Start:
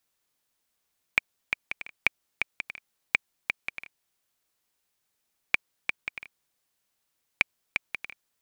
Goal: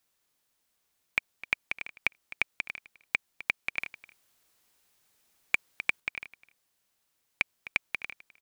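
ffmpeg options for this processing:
-filter_complex "[0:a]aecho=1:1:257:0.0841,asettb=1/sr,asplit=3[s0][s1][s2];[s0]atrim=end=3.774[s3];[s1]atrim=start=3.77:end=6,asetpts=PTS-STARTPTS,afade=t=in:d=0.004:c=qsin,afade=t=out:st=2.226:d=0.004:c=qsin,acontrast=71[s4];[s2]atrim=start=5.996[s5];[s3][s4]acrossfade=d=0.004:c1=hsin:c2=qsin[s6];[s6][s5]acrossfade=d=0.004:c1=qsin:c2=hsin,alimiter=level_in=2.82:limit=0.891:release=50:level=0:latency=1,volume=0.422"

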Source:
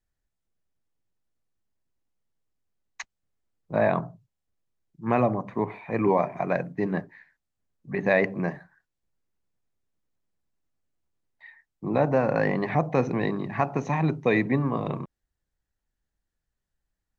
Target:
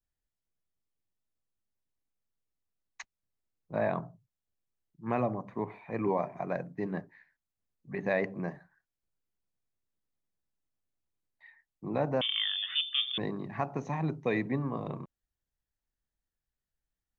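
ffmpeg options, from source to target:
-filter_complex "[0:a]adynamicequalizer=threshold=0.00562:dfrequency=2500:dqfactor=1.1:tfrequency=2500:tqfactor=1.1:attack=5:release=100:ratio=0.375:range=3:mode=cutabove:tftype=bell,asettb=1/sr,asplit=3[s0][s1][s2];[s0]atrim=end=12.214[s3];[s1]atrim=start=12.21:end=13.18,asetpts=PTS-STARTPTS,afade=t=in:d=0.004:c=qsin,afade=t=out:st=0.966:d=0.004:c=qsin,lowpass=f=3100:t=q:w=0.5098,lowpass=f=3100:t=q:w=0.6013,lowpass=f=3100:t=q:w=0.9,lowpass=f=3100:t=q:w=2.563,afreqshift=-3700[s4];[s2]atrim=start=13.176[s5];[s3][s4]acrossfade=d=0.004:c1=hsin:c2=qsin[s6];[s6][s5]acrossfade=d=0.004:c1=qsin:c2=hsin,volume=0.422"

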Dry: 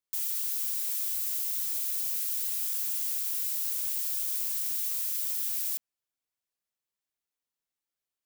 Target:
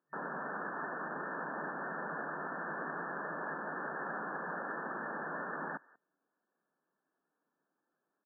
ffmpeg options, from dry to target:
-filter_complex "[0:a]equalizer=f=300:w=1.5:g=5.5,aecho=1:1:184:0.168,asplit=2[s0][s1];[s1]acrusher=bits=4:mix=0:aa=0.000001,volume=0.335[s2];[s0][s2]amix=inputs=2:normalize=0,afftfilt=real='re*between(b*sr/4096,150,1800)':imag='im*between(b*sr/4096,150,1800)':win_size=4096:overlap=0.75,volume=5.31"

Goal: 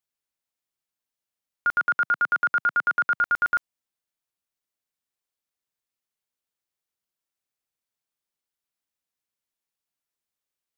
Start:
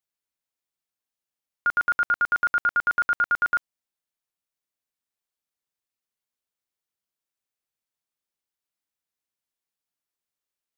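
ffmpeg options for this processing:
-filter_complex "[0:a]asettb=1/sr,asplit=3[s0][s1][s2];[s0]atrim=end=1.804[s3];[s1]atrim=start=1.8:end=3.15,asetpts=PTS-STARTPTS,afade=t=in:d=0.004:c=qsin,afade=t=out:st=1.346:d=0.004:c=qsin,highpass=f=140:w=0.5412,highpass=f=140:w=1.3066[s4];[s2]atrim=start=3.146[s5];[s3][s4]acrossfade=d=0.004:c1=hsin:c2=qsin[s6];[s6][s5]acrossfade=d=0.004:c1=qsin:c2=hsin"

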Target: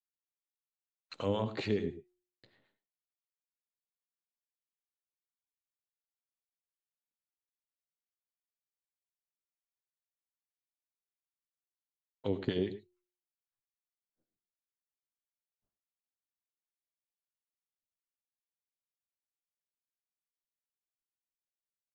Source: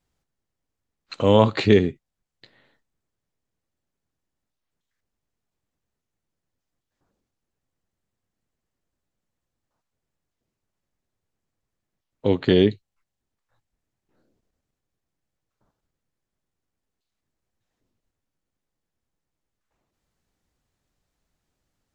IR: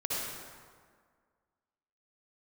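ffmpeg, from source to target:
-filter_complex "[0:a]acompressor=threshold=0.112:ratio=6,acrossover=split=750[s0][s1];[s0]aeval=exprs='val(0)*(1-0.7/2+0.7/2*cos(2*PI*6.9*n/s))':c=same[s2];[s1]aeval=exprs='val(0)*(1-0.7/2-0.7/2*cos(2*PI*6.9*n/s))':c=same[s3];[s2][s3]amix=inputs=2:normalize=0,agate=range=0.0224:threshold=0.00112:ratio=3:detection=peak,bandreject=f=359:t=h:w=4,bandreject=f=718:t=h:w=4,asplit=2[s4][s5];[1:a]atrim=start_sample=2205,atrim=end_sample=3528,asetrate=31752,aresample=44100[s6];[s5][s6]afir=irnorm=-1:irlink=0,volume=0.237[s7];[s4][s7]amix=inputs=2:normalize=0,volume=0.398"

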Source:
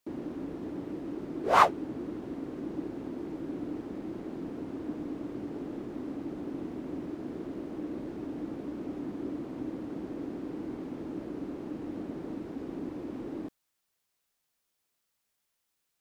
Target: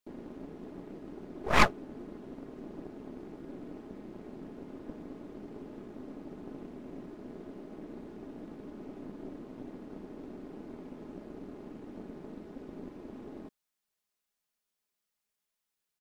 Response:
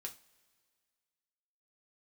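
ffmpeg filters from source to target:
-af "aecho=1:1:4.8:0.42,aeval=exprs='0.596*(cos(1*acos(clip(val(0)/0.596,-1,1)))-cos(1*PI/2))+0.266*(cos(4*acos(clip(val(0)/0.596,-1,1)))-cos(4*PI/2))+0.0841*(cos(8*acos(clip(val(0)/0.596,-1,1)))-cos(8*PI/2))':c=same,volume=0.447"

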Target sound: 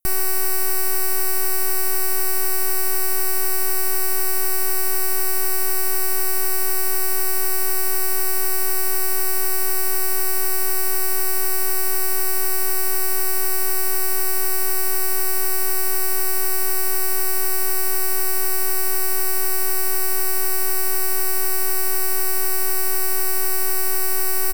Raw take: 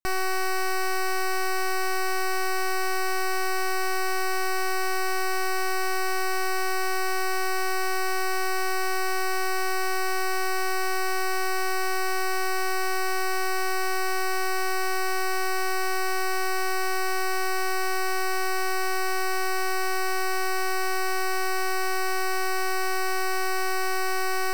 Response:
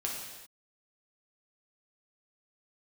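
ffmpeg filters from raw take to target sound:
-af "firequalizer=gain_entry='entry(190,0);entry(460,-13);entry(4200,-9);entry(11000,11)':delay=0.05:min_phase=1,volume=2.51"

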